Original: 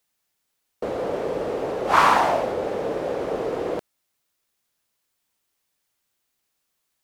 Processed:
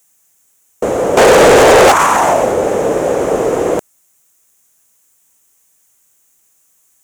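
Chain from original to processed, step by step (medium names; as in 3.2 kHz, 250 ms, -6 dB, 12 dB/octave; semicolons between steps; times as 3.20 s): resonant high shelf 5.6 kHz +7 dB, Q 3; 1.17–1.92 s: overdrive pedal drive 31 dB, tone 7 kHz, clips at -11.5 dBFS; loudness maximiser +13.5 dB; trim -1 dB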